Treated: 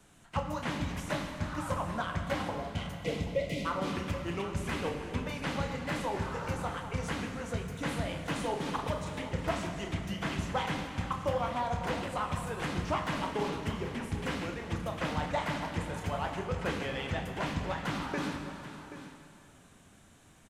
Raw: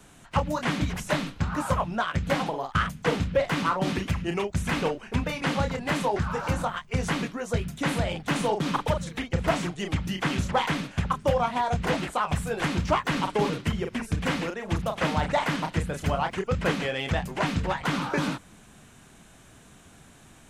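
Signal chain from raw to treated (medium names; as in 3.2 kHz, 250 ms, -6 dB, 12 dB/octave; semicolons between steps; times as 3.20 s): spectral selection erased 2.58–3.65 s, 730–1900 Hz; delay 780 ms -14 dB; plate-style reverb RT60 2.8 s, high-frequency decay 0.8×, DRR 4 dB; trim -8.5 dB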